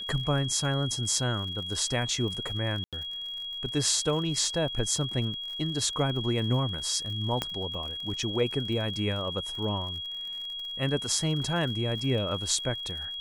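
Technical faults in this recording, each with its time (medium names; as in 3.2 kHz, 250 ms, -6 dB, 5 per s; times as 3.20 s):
crackle 57 per s -37 dBFS
whine 3.3 kHz -34 dBFS
2.84–2.93 s: dropout 87 ms
7.42 s: pop -13 dBFS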